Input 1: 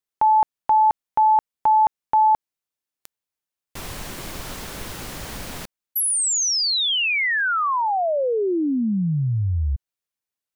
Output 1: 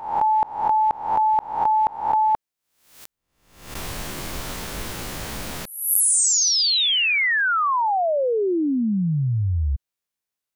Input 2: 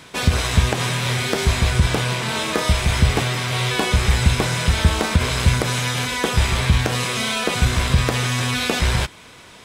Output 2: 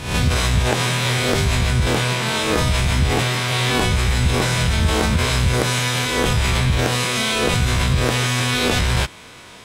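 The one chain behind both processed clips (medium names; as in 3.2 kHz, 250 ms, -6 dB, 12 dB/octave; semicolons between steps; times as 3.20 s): reverse spectral sustain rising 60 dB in 0.63 s; in parallel at -2 dB: compressor with a negative ratio -18 dBFS, ratio -0.5; on the sum: trim -5.5 dB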